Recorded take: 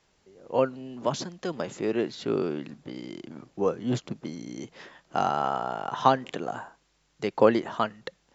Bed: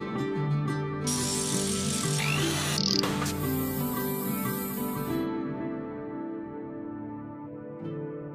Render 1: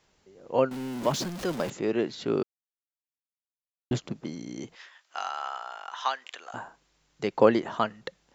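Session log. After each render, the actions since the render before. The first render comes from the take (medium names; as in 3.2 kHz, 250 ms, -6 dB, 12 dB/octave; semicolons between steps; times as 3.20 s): 0.71–1.70 s: jump at every zero crossing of -33.5 dBFS; 2.43–3.91 s: mute; 4.75–6.54 s: high-pass 1.4 kHz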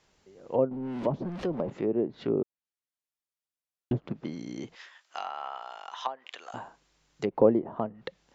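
low-pass that closes with the level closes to 700 Hz, closed at -25 dBFS; dynamic bell 1.5 kHz, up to -7 dB, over -49 dBFS, Q 2.2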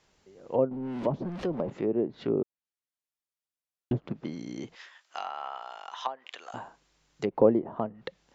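no audible change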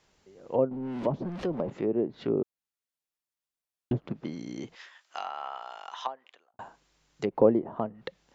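5.96–6.59 s: studio fade out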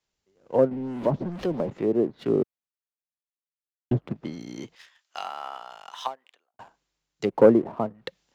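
waveshaping leveller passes 1; three bands expanded up and down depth 40%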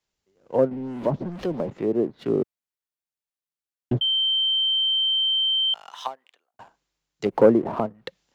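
4.01–5.74 s: bleep 3.12 kHz -19 dBFS; 7.26–7.86 s: upward compressor, threshold -16 dBFS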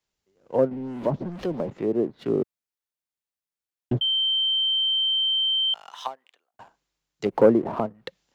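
trim -1 dB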